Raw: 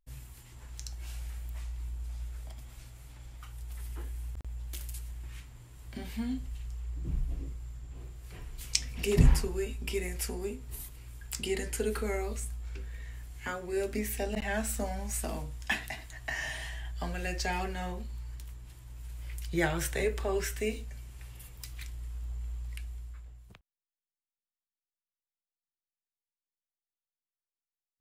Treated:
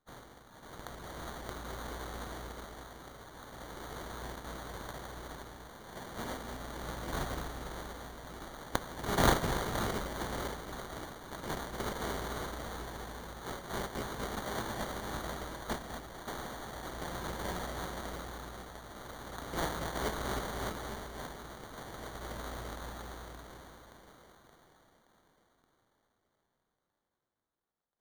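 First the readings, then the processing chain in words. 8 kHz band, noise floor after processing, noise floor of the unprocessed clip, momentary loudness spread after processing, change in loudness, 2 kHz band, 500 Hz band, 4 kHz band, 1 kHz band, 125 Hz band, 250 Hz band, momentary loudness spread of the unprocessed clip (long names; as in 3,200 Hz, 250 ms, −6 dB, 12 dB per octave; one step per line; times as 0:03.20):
−5.5 dB, −83 dBFS, below −85 dBFS, 13 LU, −4.0 dB, −2.5 dB, −3.5 dB, −1.0 dB, +5.0 dB, −6.5 dB, −3.0 dB, 17 LU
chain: compressing power law on the bin magnitudes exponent 0.31
echo with a time of its own for lows and highs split 2,400 Hz, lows 240 ms, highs 573 ms, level −6 dB
decimation without filtering 17×
level −6 dB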